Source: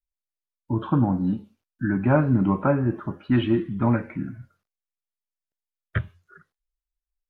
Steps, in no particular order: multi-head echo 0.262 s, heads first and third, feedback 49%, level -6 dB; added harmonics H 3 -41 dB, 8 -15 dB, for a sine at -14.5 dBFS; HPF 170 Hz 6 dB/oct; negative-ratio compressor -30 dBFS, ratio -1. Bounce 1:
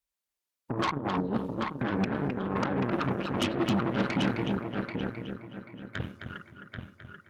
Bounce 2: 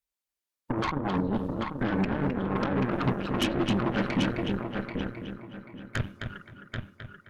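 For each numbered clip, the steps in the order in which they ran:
negative-ratio compressor > multi-head echo > added harmonics > HPF; HPF > negative-ratio compressor > multi-head echo > added harmonics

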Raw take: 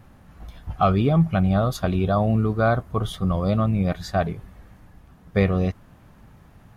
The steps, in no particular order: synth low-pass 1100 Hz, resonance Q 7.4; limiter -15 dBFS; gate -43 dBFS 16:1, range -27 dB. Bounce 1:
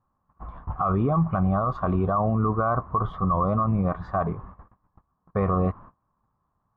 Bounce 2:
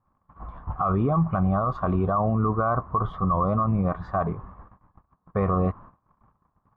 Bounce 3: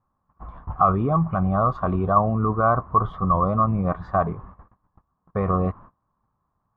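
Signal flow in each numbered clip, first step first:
gate > synth low-pass > limiter; synth low-pass > limiter > gate; limiter > gate > synth low-pass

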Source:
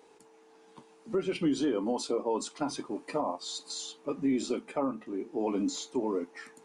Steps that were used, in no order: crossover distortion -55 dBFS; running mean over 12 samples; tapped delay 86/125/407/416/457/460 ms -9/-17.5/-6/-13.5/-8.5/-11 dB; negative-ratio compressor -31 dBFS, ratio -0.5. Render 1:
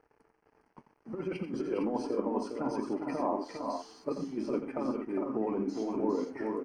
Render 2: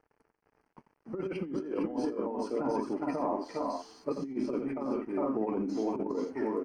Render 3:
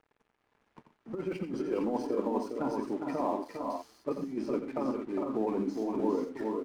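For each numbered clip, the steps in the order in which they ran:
negative-ratio compressor > tapped delay > crossover distortion > running mean; tapped delay > crossover distortion > running mean > negative-ratio compressor; running mean > crossover distortion > negative-ratio compressor > tapped delay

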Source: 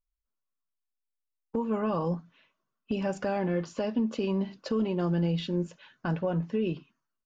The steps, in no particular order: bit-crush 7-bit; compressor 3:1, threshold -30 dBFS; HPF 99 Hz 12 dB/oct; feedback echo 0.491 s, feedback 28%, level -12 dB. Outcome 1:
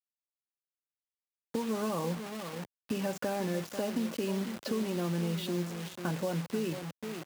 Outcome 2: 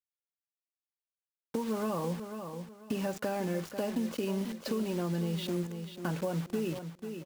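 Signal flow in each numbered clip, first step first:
feedback echo > compressor > bit-crush > HPF; HPF > bit-crush > feedback echo > compressor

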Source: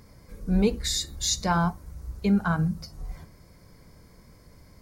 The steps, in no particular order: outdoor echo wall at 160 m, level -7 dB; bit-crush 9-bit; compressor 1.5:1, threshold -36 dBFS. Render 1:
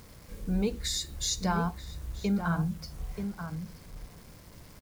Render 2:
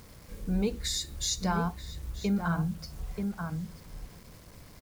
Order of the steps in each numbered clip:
compressor > bit-crush > outdoor echo; outdoor echo > compressor > bit-crush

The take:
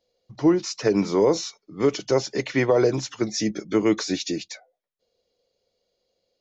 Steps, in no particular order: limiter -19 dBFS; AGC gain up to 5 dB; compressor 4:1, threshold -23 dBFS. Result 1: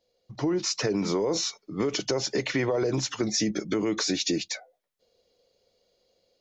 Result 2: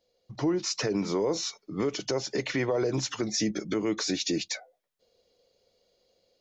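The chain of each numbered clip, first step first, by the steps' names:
limiter > AGC > compressor; AGC > compressor > limiter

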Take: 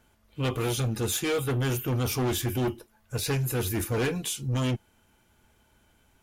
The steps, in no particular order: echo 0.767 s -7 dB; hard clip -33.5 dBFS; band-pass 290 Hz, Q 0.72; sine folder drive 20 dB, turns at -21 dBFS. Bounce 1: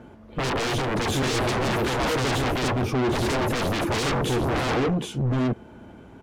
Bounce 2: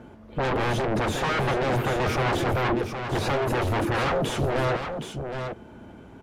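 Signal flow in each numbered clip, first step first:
band-pass > hard clip > echo > sine folder; hard clip > band-pass > sine folder > echo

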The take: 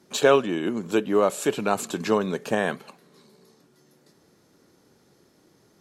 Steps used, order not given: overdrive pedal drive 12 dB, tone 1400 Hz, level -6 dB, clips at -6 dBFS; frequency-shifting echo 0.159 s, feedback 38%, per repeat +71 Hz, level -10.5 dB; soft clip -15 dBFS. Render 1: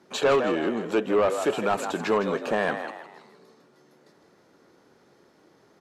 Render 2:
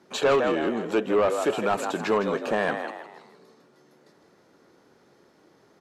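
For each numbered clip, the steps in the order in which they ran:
overdrive pedal > frequency-shifting echo > soft clip; frequency-shifting echo > overdrive pedal > soft clip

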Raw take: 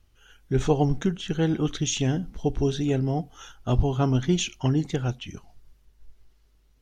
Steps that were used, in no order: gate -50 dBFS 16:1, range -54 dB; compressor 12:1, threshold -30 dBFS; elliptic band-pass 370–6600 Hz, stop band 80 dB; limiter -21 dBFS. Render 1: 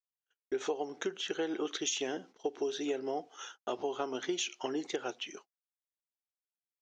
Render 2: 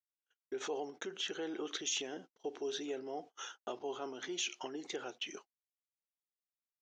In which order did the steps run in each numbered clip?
elliptic band-pass > gate > compressor > limiter; limiter > compressor > elliptic band-pass > gate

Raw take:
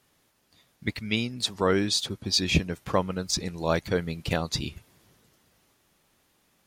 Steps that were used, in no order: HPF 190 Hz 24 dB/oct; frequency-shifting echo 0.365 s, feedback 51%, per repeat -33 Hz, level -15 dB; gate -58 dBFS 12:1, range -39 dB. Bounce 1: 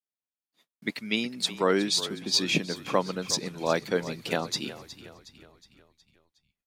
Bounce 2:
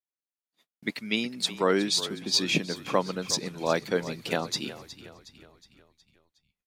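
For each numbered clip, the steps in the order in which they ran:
gate > HPF > frequency-shifting echo; HPF > gate > frequency-shifting echo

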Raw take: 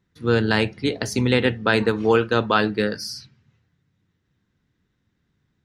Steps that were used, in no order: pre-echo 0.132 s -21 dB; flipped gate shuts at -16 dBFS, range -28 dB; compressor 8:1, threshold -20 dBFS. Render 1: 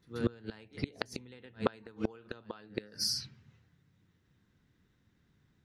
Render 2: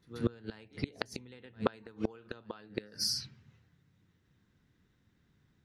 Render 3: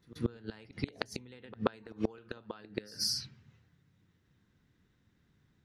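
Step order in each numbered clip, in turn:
pre-echo > compressor > flipped gate; compressor > pre-echo > flipped gate; compressor > flipped gate > pre-echo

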